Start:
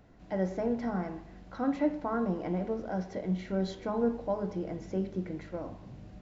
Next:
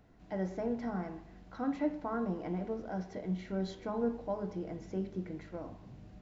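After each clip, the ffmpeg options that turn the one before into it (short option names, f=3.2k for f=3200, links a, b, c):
-af "bandreject=f=550:w=14,volume=-4dB"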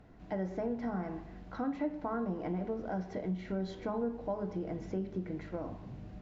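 -af "aemphasis=mode=reproduction:type=cd,acompressor=threshold=-39dB:ratio=2.5,volume=5dB"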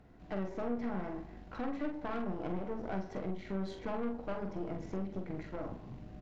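-filter_complex "[0:a]aeval=exprs='(tanh(56.2*val(0)+0.8)-tanh(0.8))/56.2':c=same,asplit=2[a][b];[b]adelay=46,volume=-6dB[c];[a][c]amix=inputs=2:normalize=0,volume=2.5dB"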